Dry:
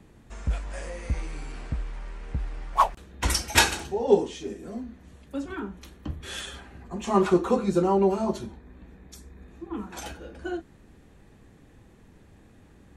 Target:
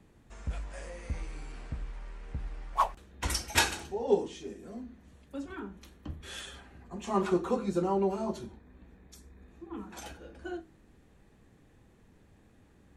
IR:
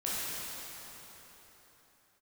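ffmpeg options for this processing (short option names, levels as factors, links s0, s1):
-filter_complex "[0:a]bandreject=f=53.57:t=h:w=4,bandreject=f=107.14:t=h:w=4,bandreject=f=160.71:t=h:w=4,bandreject=f=214.28:t=h:w=4,bandreject=f=267.85:t=h:w=4,bandreject=f=321.42:t=h:w=4,bandreject=f=374.99:t=h:w=4,asplit=2[s0][s1];[1:a]atrim=start_sample=2205,atrim=end_sample=3528,adelay=24[s2];[s1][s2]afir=irnorm=-1:irlink=0,volume=0.075[s3];[s0][s3]amix=inputs=2:normalize=0,volume=0.473"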